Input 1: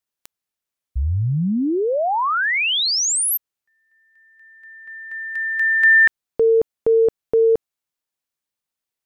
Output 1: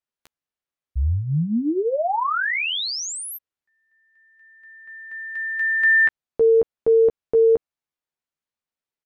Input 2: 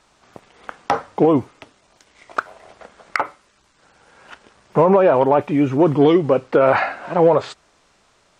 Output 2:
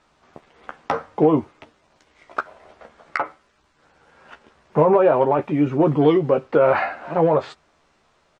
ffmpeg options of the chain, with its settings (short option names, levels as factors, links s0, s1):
-filter_complex "[0:a]lowpass=f=2900:p=1,asplit=2[s0][s1];[s1]adelay=13,volume=0.501[s2];[s0][s2]amix=inputs=2:normalize=0,volume=0.708"